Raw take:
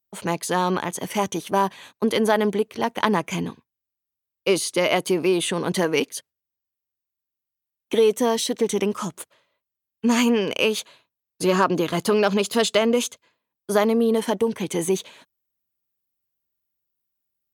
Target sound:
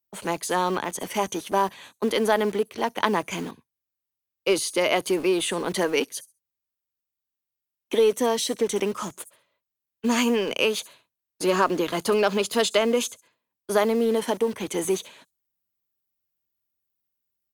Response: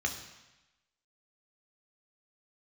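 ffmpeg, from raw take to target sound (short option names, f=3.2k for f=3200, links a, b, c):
-filter_complex "[0:a]acrossover=split=180|7100[a][b][c];[a]aeval=exprs='(mod(106*val(0)+1,2)-1)/106':c=same[d];[c]aecho=1:1:67|134|201:0.335|0.0636|0.0121[e];[d][b][e]amix=inputs=3:normalize=0,volume=-1.5dB"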